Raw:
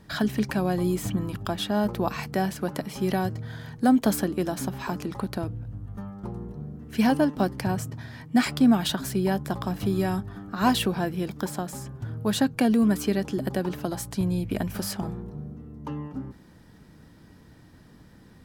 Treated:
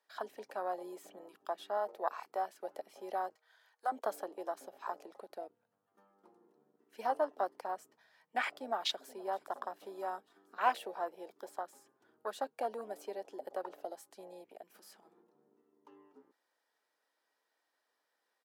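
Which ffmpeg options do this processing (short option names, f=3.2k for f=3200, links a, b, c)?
-filter_complex "[0:a]asettb=1/sr,asplit=3[a][b][c];[a]atrim=end=1.774[d];[b]atrim=start=1.77:end=2.63,asetpts=PTS-STARTPTS,afade=t=in:d=0.004:c=qsin,afade=t=out:st=0.856:d=0.004:c=qsin,highpass=f=230:p=1[e];[c]atrim=start=2.626[f];[d][e]acrossfade=d=0.004:c1=hsin:c2=qsin[g];[g][f]acrossfade=d=0.004:c1=qsin:c2=hsin,asettb=1/sr,asplit=3[h][i][j];[h]atrim=end=3.354[k];[i]atrim=start=3.35:end=3.92,asetpts=PTS-STARTPTS,afade=t=in:d=0.004:c=qsin,afade=t=out:st=0.566:d=0.004:c=qsin,highpass=760[l];[j]atrim=start=3.916[m];[k][l]acrossfade=d=0.004:c1=hsin:c2=qsin[n];[n][m]acrossfade=d=0.004:c1=qsin:c2=hsin,asplit=2[o][p];[p]afade=t=in:st=8.42:d=0.01,afade=t=out:st=9.17:d=0.01,aecho=0:1:470|940|1410|1880|2350|2820:0.141254|0.0847523|0.0508514|0.0305108|0.0183065|0.0109839[q];[o][q]amix=inputs=2:normalize=0,asplit=3[r][s][t];[r]afade=t=out:st=14.48:d=0.02[u];[s]acompressor=threshold=-30dB:ratio=16:attack=3.2:release=140:knee=1:detection=peak,afade=t=in:st=14.48:d=0.02,afade=t=out:st=15.91:d=0.02[v];[t]afade=t=in:st=15.91:d=0.02[w];[u][v][w]amix=inputs=3:normalize=0,afwtdn=0.0316,highpass=f=540:w=0.5412,highpass=f=540:w=1.3066,volume=-4.5dB"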